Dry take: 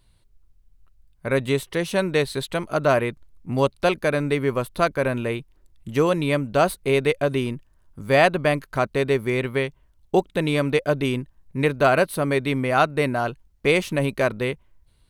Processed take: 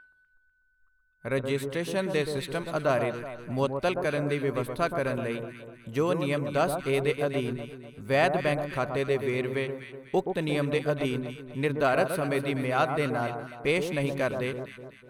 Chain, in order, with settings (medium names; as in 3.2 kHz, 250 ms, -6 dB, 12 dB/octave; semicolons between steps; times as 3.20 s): whistle 1.5 kHz -37 dBFS; in parallel at -12 dB: saturation -12.5 dBFS, distortion -16 dB; on the sum: spectral noise reduction 15 dB; echo whose repeats swap between lows and highs 124 ms, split 1.3 kHz, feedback 64%, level -6 dB; trim -8.5 dB